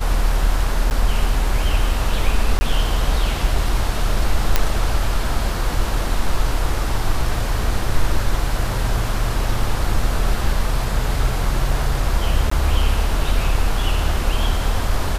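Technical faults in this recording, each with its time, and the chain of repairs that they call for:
0:00.90–0:00.91: drop-out 9.7 ms
0:02.59–0:02.61: drop-out 20 ms
0:04.56: click 0 dBFS
0:12.50–0:12.51: drop-out 14 ms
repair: click removal
repair the gap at 0:00.90, 9.7 ms
repair the gap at 0:02.59, 20 ms
repair the gap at 0:12.50, 14 ms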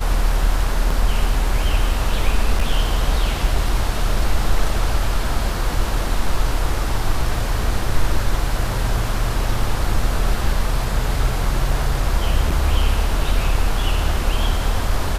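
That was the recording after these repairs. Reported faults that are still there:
none of them is left

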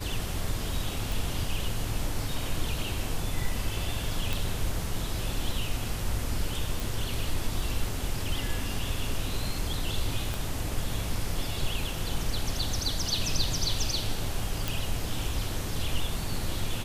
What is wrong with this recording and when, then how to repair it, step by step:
0:01.12: click
0:04.33: click
0:06.80: click
0:10.34: click
0:14.68: click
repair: click removal

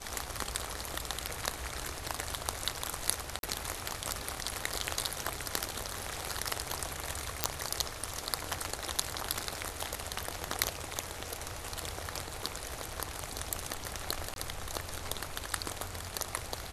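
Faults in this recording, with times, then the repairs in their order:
0:03.39–0:03.43: drop-out 42 ms
0:07.44: click −5 dBFS
0:14.34–0:14.36: drop-out 22 ms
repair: click removal
repair the gap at 0:03.39, 42 ms
repair the gap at 0:14.34, 22 ms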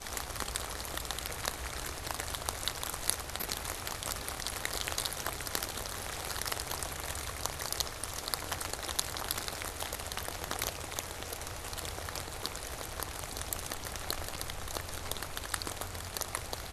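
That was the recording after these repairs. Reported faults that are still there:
none of them is left

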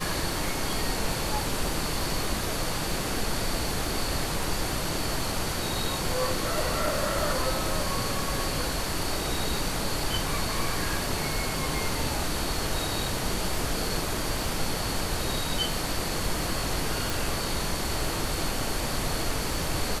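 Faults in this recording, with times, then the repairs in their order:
surface crackle 44 per second −35 dBFS
0:17.10: click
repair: click removal

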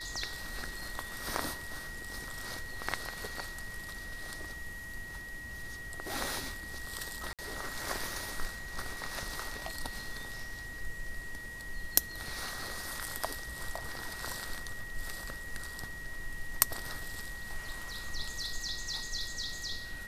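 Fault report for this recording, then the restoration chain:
whistle 1,900 Hz −43 dBFS
0:07.33–0:07.39: drop-out 57 ms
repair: notch filter 1,900 Hz, Q 30
repair the gap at 0:07.33, 57 ms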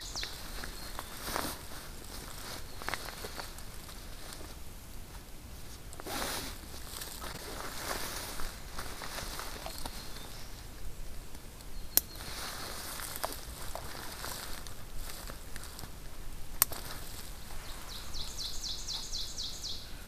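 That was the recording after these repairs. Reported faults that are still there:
none of them is left

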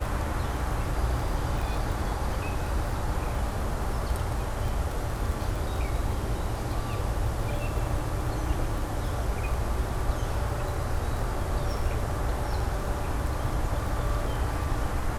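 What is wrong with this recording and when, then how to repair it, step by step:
surface crackle 26 per second −32 dBFS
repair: click removal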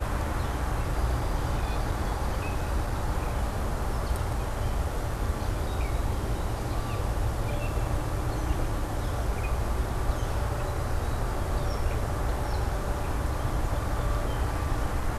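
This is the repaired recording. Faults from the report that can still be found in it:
none of them is left

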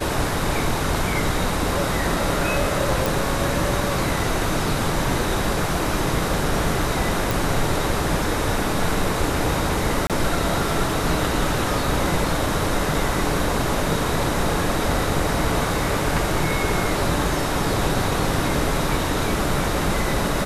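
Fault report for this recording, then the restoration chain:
0:03.06: click
0:07.31: click
0:10.07–0:10.10: drop-out 27 ms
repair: click removal
repair the gap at 0:10.07, 27 ms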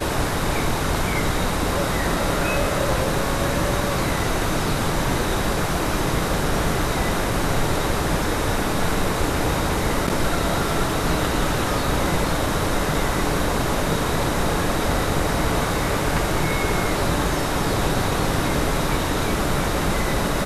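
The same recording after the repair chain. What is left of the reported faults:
none of them is left

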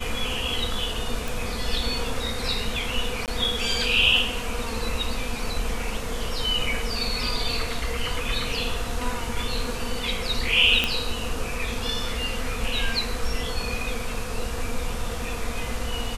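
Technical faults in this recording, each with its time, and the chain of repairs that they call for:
0:01.28: click
0:03.26–0:03.28: drop-out 18 ms
0:10.84: click −7 dBFS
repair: click removal
repair the gap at 0:03.26, 18 ms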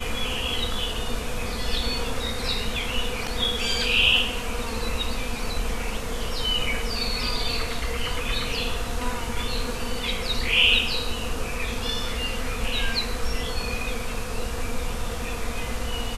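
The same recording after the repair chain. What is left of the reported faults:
none of them is left

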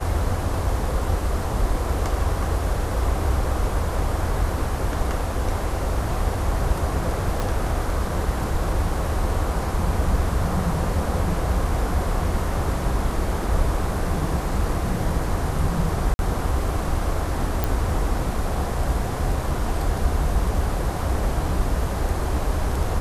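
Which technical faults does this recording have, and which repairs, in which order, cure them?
0:07.40: click
0:16.14–0:16.19: drop-out 51 ms
0:17.64: click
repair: click removal
repair the gap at 0:16.14, 51 ms

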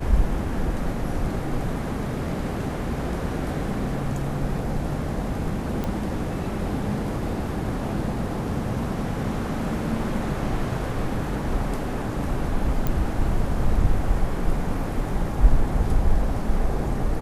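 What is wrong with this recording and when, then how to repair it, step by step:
0:05.84: click −15 dBFS
0:12.87: click −11 dBFS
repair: click removal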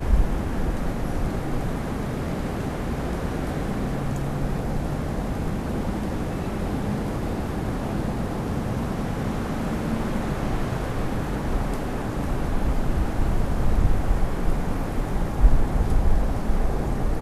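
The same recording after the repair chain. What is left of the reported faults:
none of them is left

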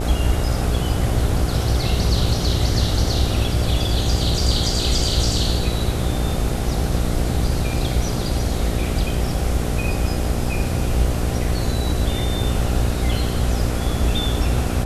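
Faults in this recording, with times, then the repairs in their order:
mains buzz 60 Hz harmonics 13 −24 dBFS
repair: hum removal 60 Hz, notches 13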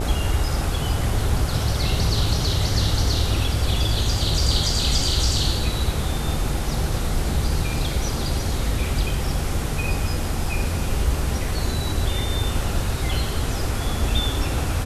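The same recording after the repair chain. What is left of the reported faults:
none of them is left

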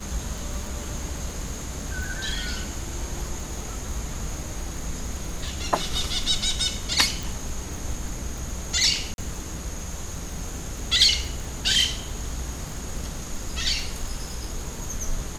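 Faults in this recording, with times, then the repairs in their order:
surface crackle 41 per second −32 dBFS
0:07.23: click
0:09.14–0:09.18: drop-out 41 ms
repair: click removal
repair the gap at 0:09.14, 41 ms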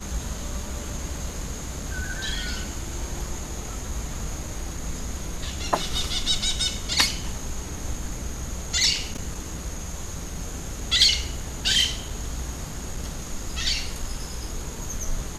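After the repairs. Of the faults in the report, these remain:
none of them is left

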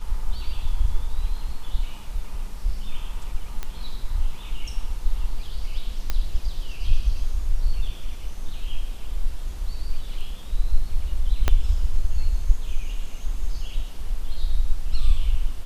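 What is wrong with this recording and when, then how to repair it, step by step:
0:03.63: click −15 dBFS
0:06.10: click −10 dBFS
0:11.48: click −6 dBFS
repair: click removal

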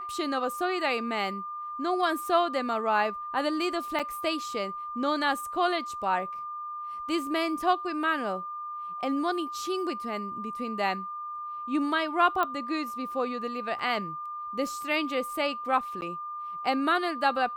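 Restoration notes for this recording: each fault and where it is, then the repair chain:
whistle 1,200 Hz −34 dBFS
0:03.99–0:04.00: drop-out 6.6 ms
0:12.43: click −15 dBFS
0:13.79: drop-out 4.3 ms
0:16.01–0:16.02: drop-out 9.9 ms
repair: click removal
notch filter 1,200 Hz, Q 30
repair the gap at 0:03.99, 6.6 ms
repair the gap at 0:13.79, 4.3 ms
repair the gap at 0:16.01, 9.9 ms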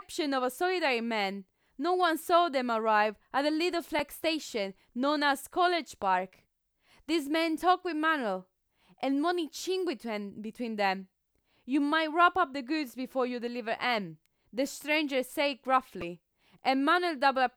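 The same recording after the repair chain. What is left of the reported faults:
none of them is left

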